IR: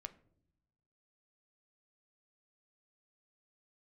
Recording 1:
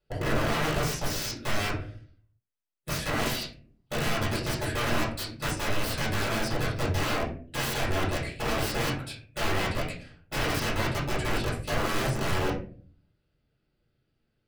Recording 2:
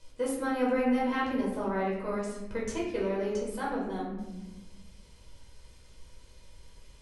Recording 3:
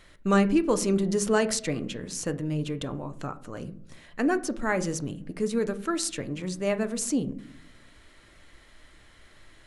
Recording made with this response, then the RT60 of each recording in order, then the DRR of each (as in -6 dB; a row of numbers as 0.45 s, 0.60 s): 3; 0.45 s, 1.1 s, no single decay rate; -6.5 dB, -5.0 dB, 9.5 dB